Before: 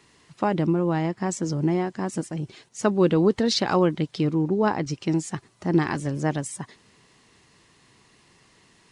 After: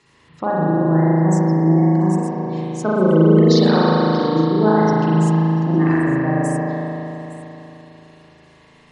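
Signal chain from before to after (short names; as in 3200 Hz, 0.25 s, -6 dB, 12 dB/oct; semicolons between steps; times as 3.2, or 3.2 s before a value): spectral gate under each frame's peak -20 dB strong; notches 50/100/150/200/250/300/350 Hz; on a send: delay with a stepping band-pass 0.172 s, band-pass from 180 Hz, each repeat 1.4 oct, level -5.5 dB; on the sum: spring tank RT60 3.5 s, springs 37 ms, chirp 25 ms, DRR -8 dB; gain -1 dB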